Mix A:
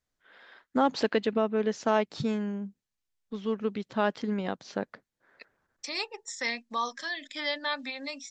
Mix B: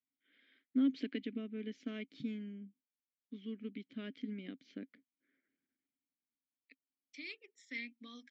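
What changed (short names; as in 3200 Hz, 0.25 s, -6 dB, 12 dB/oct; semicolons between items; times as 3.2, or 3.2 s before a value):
second voice: entry +1.30 s; master: add vowel filter i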